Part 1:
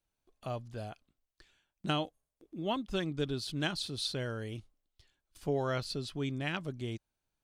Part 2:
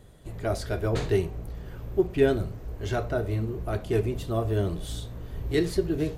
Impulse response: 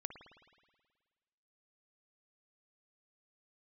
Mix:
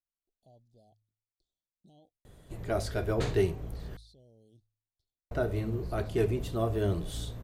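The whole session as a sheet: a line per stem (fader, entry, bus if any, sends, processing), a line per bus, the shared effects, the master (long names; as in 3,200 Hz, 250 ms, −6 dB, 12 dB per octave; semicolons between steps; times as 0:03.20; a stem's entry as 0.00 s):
−19.0 dB, 0.00 s, no send, elliptic band-stop filter 750–3,700 Hz; brickwall limiter −32.5 dBFS, peak gain reduction 11 dB
−2.0 dB, 2.25 s, muted 0:03.97–0:05.31, no send, no processing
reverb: not used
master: hum removal 53.89 Hz, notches 2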